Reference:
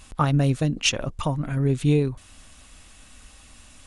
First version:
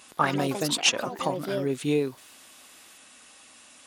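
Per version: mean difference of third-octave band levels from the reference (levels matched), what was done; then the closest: 7.0 dB: HPF 310 Hz 12 dB/oct; echoes that change speed 84 ms, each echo +5 st, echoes 3, each echo -6 dB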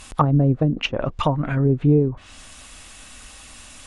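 4.5 dB: treble ducked by the level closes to 480 Hz, closed at -17.5 dBFS; low shelf 310 Hz -6.5 dB; gain +8.5 dB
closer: second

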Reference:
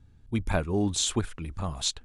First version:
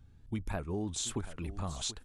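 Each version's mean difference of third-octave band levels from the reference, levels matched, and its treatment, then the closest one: 4.5 dB: dynamic EQ 3600 Hz, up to -4 dB, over -41 dBFS, Q 0.79; compressor 4:1, threshold -31 dBFS, peak gain reduction 9 dB; on a send: echo 0.731 s -14.5 dB; on the sum: shaped vibrato saw up 3.4 Hz, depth 100 cents; gain -2 dB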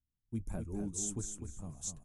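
7.5 dB: gate -46 dBFS, range -22 dB; EQ curve 230 Hz 0 dB, 1200 Hz -13 dB, 4200 Hz -18 dB, 6300 Hz +4 dB; flange 1.4 Hz, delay 2.9 ms, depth 5.9 ms, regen -38%; feedback echo 0.25 s, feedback 23%, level -6.5 dB; gain -7 dB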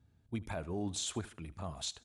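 3.0 dB: HPF 79 Hz 12 dB/oct; bell 660 Hz +6 dB 0.27 oct; limiter -19.5 dBFS, peak gain reduction 9 dB; feedback echo 76 ms, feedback 35%, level -20 dB; gain -8 dB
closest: third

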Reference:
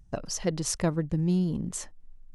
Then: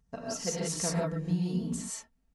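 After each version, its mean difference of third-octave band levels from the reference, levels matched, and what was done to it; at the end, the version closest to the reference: 8.0 dB: HPF 58 Hz 12 dB/oct; low shelf 350 Hz -3 dB; comb 4.4 ms, depth 60%; non-linear reverb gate 0.2 s rising, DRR -4.5 dB; gain -8 dB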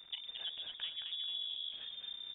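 15.0 dB: crackle 360/s -42 dBFS; compressor 5:1, threshold -37 dBFS, peak gain reduction 14.5 dB; on a send: frequency-shifting echo 0.219 s, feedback 38%, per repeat +69 Hz, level -5 dB; on the sum: inverted band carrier 3600 Hz; gain -4 dB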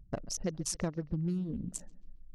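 4.5 dB: Wiener smoothing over 41 samples; reverb removal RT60 0.7 s; compressor 4:1, threshold -31 dBFS, peak gain reduction 9 dB; analogue delay 0.136 s, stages 4096, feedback 47%, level -20 dB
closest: third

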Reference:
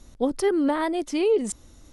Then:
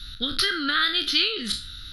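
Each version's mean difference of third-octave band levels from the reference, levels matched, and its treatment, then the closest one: 10.0 dB: spectral trails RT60 0.33 s; band shelf 2400 Hz +12.5 dB 2.3 oct; compressor, threshold -20 dBFS, peak gain reduction 6 dB; EQ curve 110 Hz 0 dB, 970 Hz -29 dB, 1400 Hz +2 dB, 2200 Hz -12 dB, 3900 Hz +9 dB, 7900 Hz -20 dB, 12000 Hz +5 dB; gain +6.5 dB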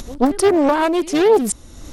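5.0 dB: dynamic EQ 9300 Hz, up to +7 dB, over -54 dBFS, Q 5.8; upward compressor, threshold -33 dBFS; pre-echo 0.133 s -20 dB; Doppler distortion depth 0.63 ms; gain +8.5 dB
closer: second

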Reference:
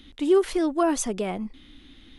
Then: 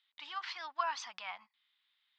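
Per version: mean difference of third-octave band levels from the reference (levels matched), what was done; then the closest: 9.0 dB: elliptic band-pass 930–4900 Hz, stop band 40 dB; gate -51 dBFS, range -18 dB; gain -3.5 dB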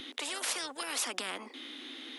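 14.5 dB: steep high-pass 250 Hz 72 dB/oct; spectral compressor 10:1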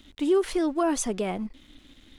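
1.5 dB: in parallel at +2 dB: limiter -18.5 dBFS, peak gain reduction 7.5 dB; on the sum: crossover distortion -49 dBFS; gain -7 dB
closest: third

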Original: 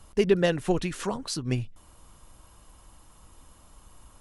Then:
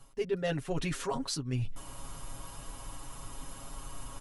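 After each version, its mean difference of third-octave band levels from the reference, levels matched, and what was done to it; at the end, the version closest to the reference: 11.0 dB: comb 7.3 ms, depth 96%; reverse; compressor 5:1, threshold -39 dBFS, peak gain reduction 24.5 dB; reverse; gain +7 dB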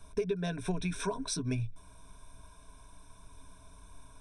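4.5 dB: ripple EQ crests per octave 1.6, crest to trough 17 dB; compressor 12:1, threshold -24 dBFS, peak gain reduction 15 dB; gain -4.5 dB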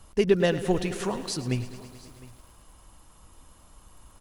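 3.0 dB: echo 0.709 s -21.5 dB; lo-fi delay 0.108 s, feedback 80%, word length 8-bit, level -15 dB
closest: third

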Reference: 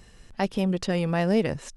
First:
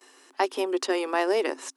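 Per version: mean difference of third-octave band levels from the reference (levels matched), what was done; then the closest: 7.5 dB: gate with hold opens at -42 dBFS; rippled Chebyshev high-pass 260 Hz, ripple 9 dB; high shelf 4700 Hz +8 dB; gain +7.5 dB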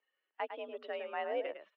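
11.0 dB: per-bin expansion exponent 1.5; echo 0.105 s -8.5 dB; mistuned SSB +57 Hz 370–3000 Hz; gain -8.5 dB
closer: first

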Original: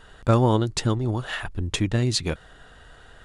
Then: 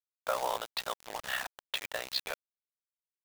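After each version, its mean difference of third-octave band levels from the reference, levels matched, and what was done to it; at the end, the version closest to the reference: 14.0 dB: elliptic band-pass 590–4100 Hz, stop band 40 dB; compressor 4:1, threshold -25 dBFS, peak gain reduction 5.5 dB; bit-crush 6-bit; ring modulator 32 Hz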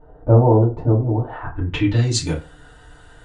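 7.0 dB: low shelf 160 Hz +7.5 dB; low-pass sweep 640 Hz -> 9000 Hz, 1.22–2.23; FDN reverb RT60 0.33 s, low-frequency decay 0.9×, high-frequency decay 0.65×, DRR -7 dB; ending taper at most 470 dB/s; gain -7 dB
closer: second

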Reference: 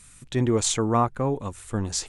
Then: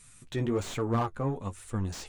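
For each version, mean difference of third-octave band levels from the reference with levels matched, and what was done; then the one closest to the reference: 3.5 dB: in parallel at -4 dB: soft clip -22 dBFS, distortion -10 dB; on the sum: flange 1.2 Hz, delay 6.6 ms, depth 7.9 ms, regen +28%; slew limiter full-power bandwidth 88 Hz; gain -5 dB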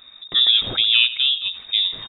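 18.0 dB: low shelf 190 Hz +4.5 dB; feedback echo 83 ms, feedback 40%, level -15.5 dB; inverted band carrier 3700 Hz; gain +3.5 dB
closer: first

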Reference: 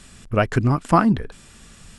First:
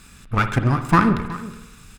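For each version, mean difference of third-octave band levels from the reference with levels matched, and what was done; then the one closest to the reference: 5.5 dB: minimum comb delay 0.8 ms; bell 1700 Hz +4 dB 0.77 oct; on a send: echo 0.369 s -17.5 dB; on the sum: spring tank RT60 1 s, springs 52 ms, chirp 35 ms, DRR 9 dB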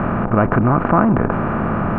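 14.5 dB: per-bin compression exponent 0.4; buzz 100 Hz, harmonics 9, -38 dBFS -1 dB/oct; LPF 1800 Hz 24 dB/oct; fast leveller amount 50%; gain -2 dB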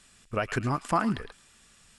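4.0 dB: low shelf 430 Hz -10 dB; thin delay 0.109 s, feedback 35%, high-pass 2200 Hz, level -10 dB; gate -40 dBFS, range -7 dB; limiter -12.5 dBFS, peak gain reduction 6.5 dB; gain -2.5 dB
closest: third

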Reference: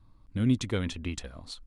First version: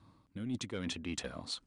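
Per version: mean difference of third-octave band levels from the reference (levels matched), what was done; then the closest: 6.5 dB: HPF 140 Hz 12 dB/oct; reverse; compressor 8:1, threshold -40 dBFS, peak gain reduction 19 dB; reverse; soft clip -31.5 dBFS, distortion -23 dB; downsampling 22050 Hz; gain +5.5 dB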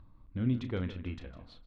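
4.5 dB: upward compressor, threshold -44 dBFS; air absorption 330 m; doubler 33 ms -10 dB; feedback echo 0.155 s, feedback 33%, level -13.5 dB; gain -4.5 dB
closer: second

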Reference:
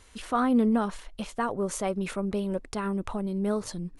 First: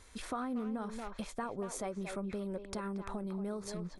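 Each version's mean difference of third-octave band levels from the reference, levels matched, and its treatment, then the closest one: 4.5 dB: notch 2900 Hz, Q 6.7; speakerphone echo 0.23 s, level -8 dB; compressor 4:1, threshold -34 dBFS, peak gain reduction 13 dB; gain -2.5 dB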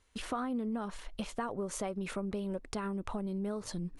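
3.0 dB: high shelf 8800 Hz -4 dB; gate -47 dBFS, range -15 dB; compressor 6:1, threshold -33 dBFS, peak gain reduction 13.5 dB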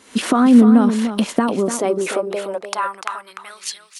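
7.0 dB: recorder AGC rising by 62 dB/s; high-pass sweep 230 Hz -> 3500 Hz, 1.54–3.95; echo 0.296 s -9 dB; gain +6 dB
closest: second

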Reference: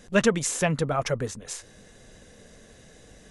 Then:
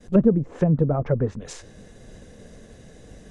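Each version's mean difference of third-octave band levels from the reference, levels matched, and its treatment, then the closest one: 6.5 dB: treble ducked by the level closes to 410 Hz, closed at -20.5 dBFS; expander -49 dBFS; tilt shelf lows +4.5 dB, about 720 Hz; gain +4 dB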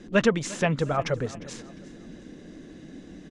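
4.0 dB: LPF 4800 Hz 12 dB/oct; band noise 160–350 Hz -45 dBFS; feedback echo 0.353 s, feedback 37%, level -19 dB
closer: second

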